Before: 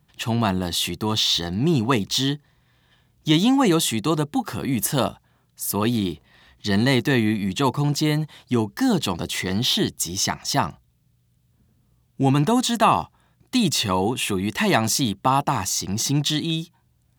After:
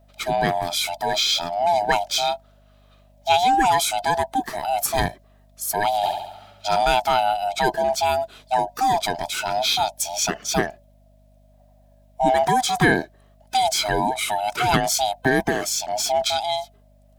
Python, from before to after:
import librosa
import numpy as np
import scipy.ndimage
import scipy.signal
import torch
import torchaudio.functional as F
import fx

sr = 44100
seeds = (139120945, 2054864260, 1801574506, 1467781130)

y = fx.band_swap(x, sr, width_hz=500)
y = fx.add_hum(y, sr, base_hz=50, snr_db=32)
y = fx.room_flutter(y, sr, wall_m=11.9, rt60_s=0.81, at=(6.02, 6.77), fade=0.02)